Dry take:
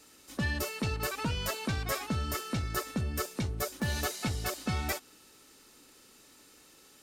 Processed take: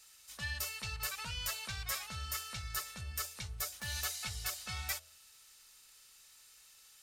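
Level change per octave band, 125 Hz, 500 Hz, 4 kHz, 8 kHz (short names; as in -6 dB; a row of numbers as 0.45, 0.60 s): -11.5, -18.0, -1.5, -0.5 dB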